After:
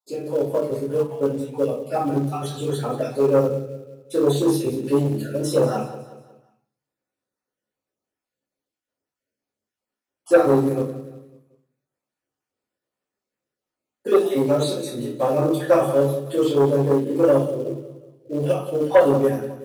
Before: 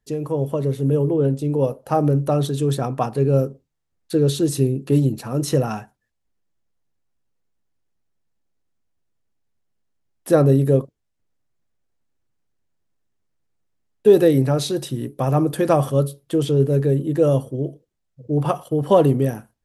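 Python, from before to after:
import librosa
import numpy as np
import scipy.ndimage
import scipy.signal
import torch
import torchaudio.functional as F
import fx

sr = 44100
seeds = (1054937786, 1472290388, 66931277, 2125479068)

p1 = fx.spec_dropout(x, sr, seeds[0], share_pct=35)
p2 = scipy.signal.sosfilt(scipy.signal.butter(2, 260.0, 'highpass', fs=sr, output='sos'), p1)
p3 = p2 + fx.echo_feedback(p2, sr, ms=182, feedback_pct=42, wet_db=-14.0, dry=0)
p4 = fx.room_shoebox(p3, sr, seeds[1], volume_m3=38.0, walls='mixed', distance_m=2.4)
p5 = fx.quant_float(p4, sr, bits=2)
p6 = p4 + (p5 * librosa.db_to_amplitude(-8.0))
p7 = fx.transformer_sat(p6, sr, knee_hz=730.0)
y = p7 * librosa.db_to_amplitude(-13.5)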